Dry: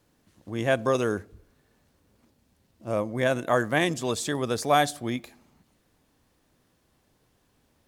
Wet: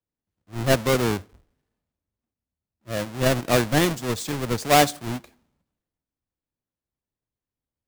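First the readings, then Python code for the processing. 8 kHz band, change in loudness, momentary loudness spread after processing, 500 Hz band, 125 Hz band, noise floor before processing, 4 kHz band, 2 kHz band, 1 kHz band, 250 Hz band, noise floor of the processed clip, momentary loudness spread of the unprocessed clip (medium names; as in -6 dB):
+6.5 dB, +3.5 dB, 14 LU, +2.0 dB, +6.5 dB, -69 dBFS, +6.0 dB, +2.0 dB, +3.0 dB, +4.0 dB, under -85 dBFS, 11 LU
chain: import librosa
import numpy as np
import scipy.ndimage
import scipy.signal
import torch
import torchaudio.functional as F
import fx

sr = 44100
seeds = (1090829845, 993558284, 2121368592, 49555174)

y = fx.halfwave_hold(x, sr)
y = fx.band_widen(y, sr, depth_pct=70)
y = y * librosa.db_to_amplitude(-3.5)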